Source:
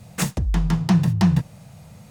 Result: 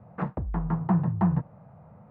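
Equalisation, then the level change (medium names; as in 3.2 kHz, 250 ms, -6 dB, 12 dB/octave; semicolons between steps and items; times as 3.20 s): low-pass 1.2 kHz 24 dB/octave; tilt EQ +2.5 dB/octave; 0.0 dB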